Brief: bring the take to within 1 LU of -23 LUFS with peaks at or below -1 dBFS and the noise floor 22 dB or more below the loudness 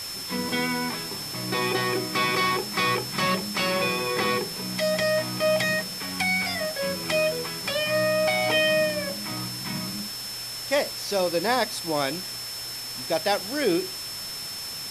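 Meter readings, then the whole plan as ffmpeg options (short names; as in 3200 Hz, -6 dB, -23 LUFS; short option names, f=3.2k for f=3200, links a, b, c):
steady tone 5300 Hz; tone level -34 dBFS; noise floor -35 dBFS; noise floor target -48 dBFS; loudness -25.5 LUFS; peak -10.0 dBFS; loudness target -23.0 LUFS
-> -af "bandreject=f=5.3k:w=30"
-af "afftdn=nr=13:nf=-35"
-af "volume=2.5dB"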